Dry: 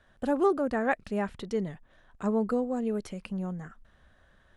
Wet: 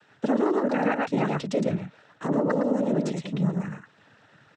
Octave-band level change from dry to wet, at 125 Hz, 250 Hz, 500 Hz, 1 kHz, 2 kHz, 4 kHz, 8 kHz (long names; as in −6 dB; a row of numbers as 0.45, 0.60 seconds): +9.5 dB, +5.0 dB, +3.0 dB, +3.5 dB, +3.0 dB, +7.5 dB, can't be measured